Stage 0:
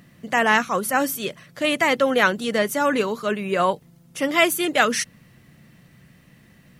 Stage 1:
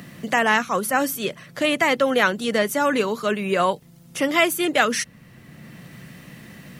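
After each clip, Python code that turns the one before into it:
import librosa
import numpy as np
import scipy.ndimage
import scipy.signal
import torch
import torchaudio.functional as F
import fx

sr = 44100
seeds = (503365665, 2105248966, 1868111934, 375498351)

y = fx.band_squash(x, sr, depth_pct=40)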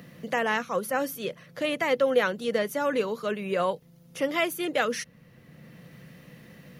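y = fx.graphic_eq_31(x, sr, hz=(160, 500, 8000), db=(4, 9, -8))
y = y * librosa.db_to_amplitude(-8.5)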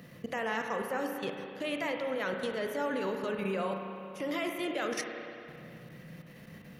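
y = fx.level_steps(x, sr, step_db=17)
y = fx.rev_spring(y, sr, rt60_s=2.7, pass_ms=(31, 55), chirp_ms=55, drr_db=3.0)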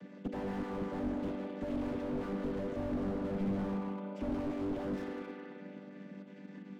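y = fx.chord_vocoder(x, sr, chord='major triad', root=55)
y = fx.slew_limit(y, sr, full_power_hz=5.1)
y = y * librosa.db_to_amplitude(3.0)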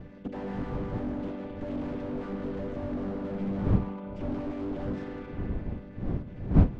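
y = fx.dmg_wind(x, sr, seeds[0], corner_hz=170.0, level_db=-34.0)
y = fx.air_absorb(y, sr, metres=76.0)
y = y * librosa.db_to_amplitude(2.0)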